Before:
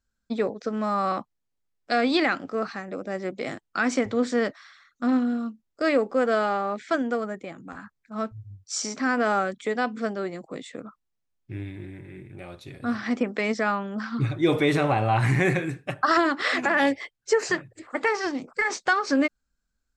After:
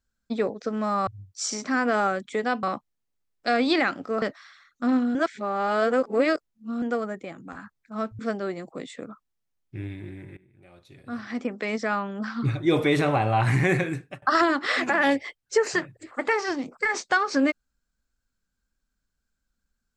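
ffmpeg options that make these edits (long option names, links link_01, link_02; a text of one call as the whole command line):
ffmpeg -i in.wav -filter_complex "[0:a]asplit=9[link_01][link_02][link_03][link_04][link_05][link_06][link_07][link_08][link_09];[link_01]atrim=end=1.072[link_10];[link_02]atrim=start=8.388:end=9.952[link_11];[link_03]atrim=start=1.068:end=2.662[link_12];[link_04]atrim=start=4.418:end=5.352[link_13];[link_05]atrim=start=5.348:end=7.022,asetpts=PTS-STARTPTS,areverse[link_14];[link_06]atrim=start=7.018:end=8.392[link_15];[link_07]atrim=start=9.948:end=12.13,asetpts=PTS-STARTPTS,afade=type=out:start_time=2.178:duration=0.004:curve=hsin:silence=0.0944061[link_16];[link_08]atrim=start=12.13:end=15.98,asetpts=PTS-STARTPTS,afade=type=in:duration=1.89:silence=0.0944061,afade=type=out:start_time=3.6:duration=0.25:silence=0.0668344[link_17];[link_09]atrim=start=15.98,asetpts=PTS-STARTPTS,afade=type=in:duration=0.004:curve=hsin:silence=0.0668344[link_18];[link_10][link_11]acrossfade=duration=0.004:curve1=hsin:curve2=hsin[link_19];[link_19][link_12]acrossfade=duration=0.004:curve1=hsin:curve2=hsin[link_20];[link_20][link_13]acrossfade=duration=0.004:curve1=hsin:curve2=hsin[link_21];[link_21][link_14]acrossfade=duration=0.004:curve1=hsin:curve2=hsin[link_22];[link_22][link_15]acrossfade=duration=0.004:curve1=hsin:curve2=hsin[link_23];[link_16][link_17][link_18]concat=n=3:v=0:a=1[link_24];[link_23][link_24]acrossfade=duration=0.004:curve1=hsin:curve2=hsin" out.wav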